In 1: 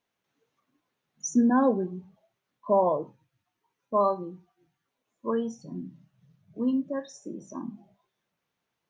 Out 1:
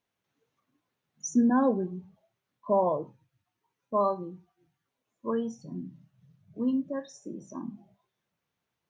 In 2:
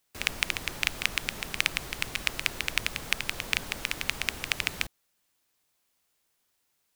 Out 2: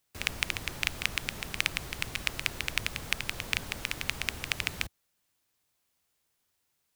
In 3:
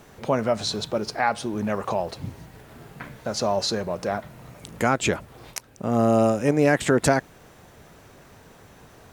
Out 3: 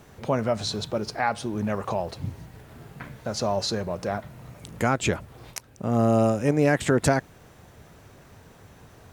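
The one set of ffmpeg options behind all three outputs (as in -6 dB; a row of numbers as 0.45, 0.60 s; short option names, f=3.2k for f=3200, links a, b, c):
-af "equalizer=f=88:w=0.83:g=6,volume=-2.5dB"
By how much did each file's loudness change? -2.0, -2.5, -2.0 LU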